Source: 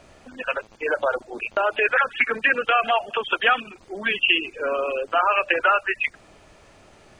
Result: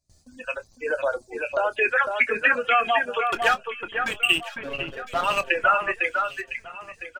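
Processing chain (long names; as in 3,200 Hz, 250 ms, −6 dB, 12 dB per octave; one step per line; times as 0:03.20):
spectral dynamics exaggerated over time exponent 1.5
noise gate with hold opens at −49 dBFS
high-shelf EQ 5,600 Hz +8.5 dB
0:03.21–0:05.50: slack as between gear wheels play −19.5 dBFS
double-tracking delay 25 ms −13.5 dB
delay that swaps between a low-pass and a high-pass 503 ms, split 2,300 Hz, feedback 52%, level −5 dB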